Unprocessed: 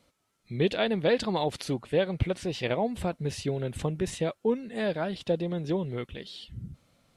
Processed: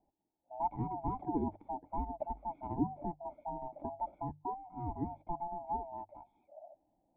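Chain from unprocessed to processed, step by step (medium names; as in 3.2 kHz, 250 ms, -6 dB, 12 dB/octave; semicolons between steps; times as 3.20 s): split-band scrambler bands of 500 Hz; cascade formant filter u; hum notches 50/100/150 Hz; trim +5 dB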